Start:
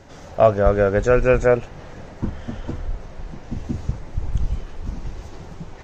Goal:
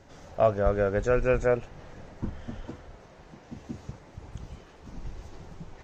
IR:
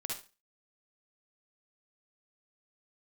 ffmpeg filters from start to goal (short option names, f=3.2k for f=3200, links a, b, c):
-filter_complex "[0:a]asettb=1/sr,asplit=3[a][b][c];[a]atrim=end=2.664[d];[b]atrim=start=2.66:end=4.94,asetpts=PTS-STARTPTS,afade=t=in:d=0.004:c=qsin,afade=t=out:st=2.276:d=0.004:c=qsin,highpass=f=210:p=1[e];[c]atrim=start=4.936[f];[d][e]acrossfade=d=0.004:c1=hsin:c2=qsin[g];[g][f]acrossfade=d=0.004:c1=qsin:c2=hsin,volume=-8dB"